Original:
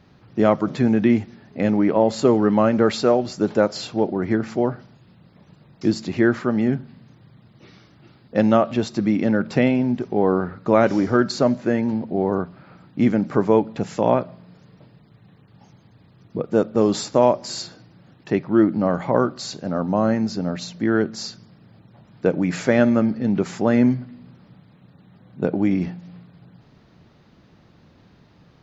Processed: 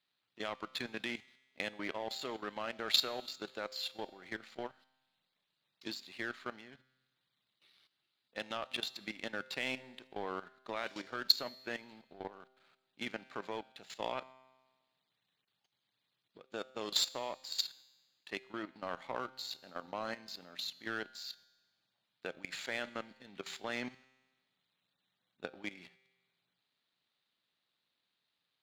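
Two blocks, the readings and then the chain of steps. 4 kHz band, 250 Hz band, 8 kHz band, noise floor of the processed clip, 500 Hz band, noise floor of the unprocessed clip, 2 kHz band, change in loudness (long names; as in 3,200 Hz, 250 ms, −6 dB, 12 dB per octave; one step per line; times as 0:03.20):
−1.5 dB, −29.5 dB, can't be measured, −85 dBFS, −24.0 dB, −54 dBFS, −11.0 dB, −19.0 dB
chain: first difference
output level in coarse steps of 11 dB
high shelf with overshoot 4,700 Hz −6.5 dB, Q 3
power curve on the samples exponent 1.4
tuned comb filter 130 Hz, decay 1.3 s, harmonics all, mix 50%
level +17 dB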